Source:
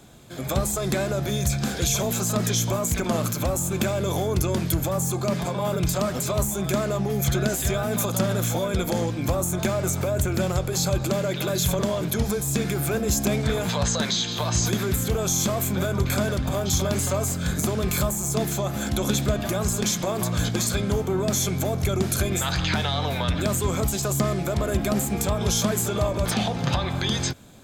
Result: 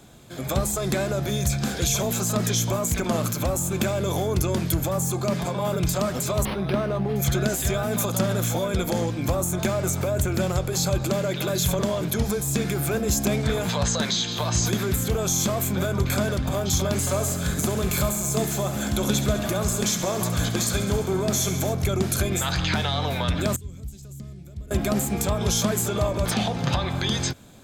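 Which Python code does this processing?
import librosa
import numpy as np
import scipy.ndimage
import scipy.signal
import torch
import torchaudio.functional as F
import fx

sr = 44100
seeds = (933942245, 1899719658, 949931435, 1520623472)

y = fx.resample_linear(x, sr, factor=6, at=(6.45, 7.16))
y = fx.echo_thinned(y, sr, ms=68, feedback_pct=78, hz=280.0, wet_db=-11.5, at=(17.06, 21.72), fade=0.02)
y = fx.tone_stack(y, sr, knobs='10-0-1', at=(23.56, 24.71))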